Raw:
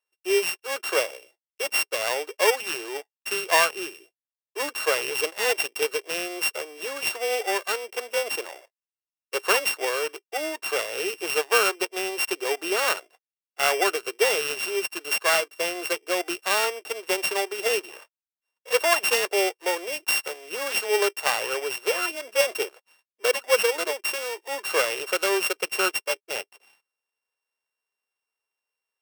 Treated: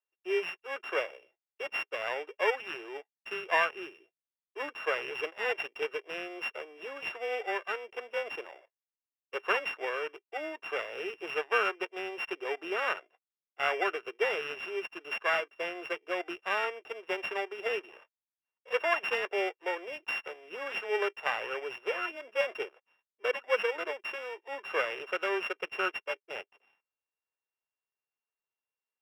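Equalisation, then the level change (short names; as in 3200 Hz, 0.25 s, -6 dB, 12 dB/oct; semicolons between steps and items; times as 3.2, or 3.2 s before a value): dynamic EQ 1700 Hz, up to +4 dB, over -34 dBFS, Q 1.2; polynomial smoothing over 25 samples; -8.0 dB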